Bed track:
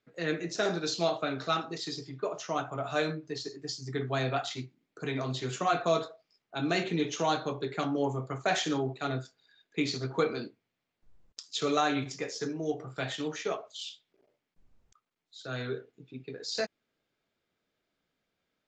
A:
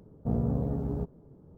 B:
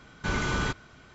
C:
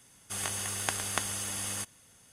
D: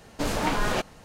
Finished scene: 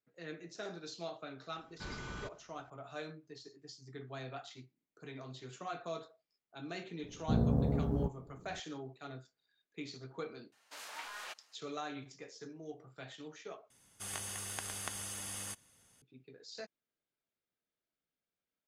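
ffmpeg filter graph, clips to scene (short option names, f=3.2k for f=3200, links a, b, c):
-filter_complex "[0:a]volume=-14.5dB[a];[4:a]highpass=1.2k[b];[3:a]alimiter=limit=-10dB:level=0:latency=1:release=71[c];[a]asplit=2[d][e];[d]atrim=end=13.704[f];[c]atrim=end=2.32,asetpts=PTS-STARTPTS,volume=-7.5dB[g];[e]atrim=start=16.016[h];[2:a]atrim=end=1.14,asetpts=PTS-STARTPTS,volume=-16.5dB,afade=t=in:d=0.004:c=hsin,afade=t=out:st=1.136:d=0.004:c=hsin,adelay=1560[i];[1:a]atrim=end=1.57,asetpts=PTS-STARTPTS,volume=-1.5dB,afade=t=in:d=0.004:c=hsin,afade=t=out:st=1.566:d=0.004:c=hsin,adelay=7030[j];[b]atrim=end=1.04,asetpts=PTS-STARTPTS,volume=-14dB,afade=t=in:d=0.004:c=hsin,afade=t=out:st=1.036:d=0.004:c=hsin,adelay=10520[k];[f][g]acrossfade=d=0.004:c1=hsin:c2=hsin[l];[l][h]acrossfade=d=0.004:c1=hsin:c2=hsin[m];[m][i][j][k]amix=inputs=4:normalize=0"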